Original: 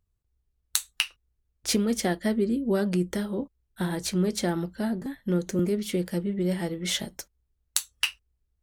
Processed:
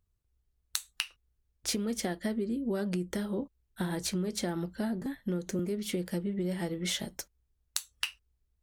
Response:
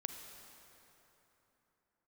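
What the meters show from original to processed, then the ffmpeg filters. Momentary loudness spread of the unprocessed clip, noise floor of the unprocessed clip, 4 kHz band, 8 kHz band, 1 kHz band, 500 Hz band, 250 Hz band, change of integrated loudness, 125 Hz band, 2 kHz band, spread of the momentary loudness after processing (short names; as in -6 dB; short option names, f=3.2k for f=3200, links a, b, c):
7 LU, -77 dBFS, -5.5 dB, -5.5 dB, -6.0 dB, -6.5 dB, -6.0 dB, -6.0 dB, -6.0 dB, -6.0 dB, 5 LU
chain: -af "acompressor=threshold=-28dB:ratio=6,volume=-1dB"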